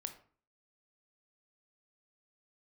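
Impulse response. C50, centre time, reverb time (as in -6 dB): 11.0 dB, 9 ms, 0.45 s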